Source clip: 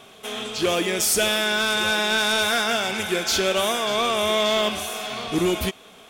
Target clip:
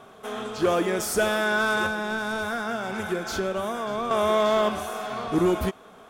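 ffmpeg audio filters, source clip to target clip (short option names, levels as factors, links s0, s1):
-filter_complex "[0:a]highshelf=f=1900:t=q:w=1.5:g=-9,asettb=1/sr,asplit=3[s0][s1][s2];[s0]atrim=end=1.864[s3];[s1]atrim=start=1.86:end=4.11,asetpts=PTS-STARTPTS,afade=t=in:d=0.004:c=qsin,afade=t=out:st=2.246:d=0.004:c=qsin,acrossover=split=290[s4][s5];[s5]acompressor=threshold=0.0355:ratio=3[s6];[s4][s6]amix=inputs=2:normalize=0[s7];[s2]atrim=start=4.106[s8];[s3][s7]acrossfade=d=0.004:c1=hsin:c2=qsin[s9];[s9][s8]acrossfade=d=0.004:c1=qsin:c2=hsin"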